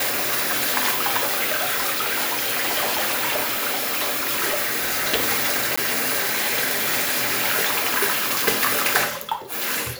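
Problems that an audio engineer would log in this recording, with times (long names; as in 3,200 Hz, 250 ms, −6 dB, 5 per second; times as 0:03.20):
0:01.51–0:05.14: clipping −18.5 dBFS
0:05.76–0:05.78: drop-out 15 ms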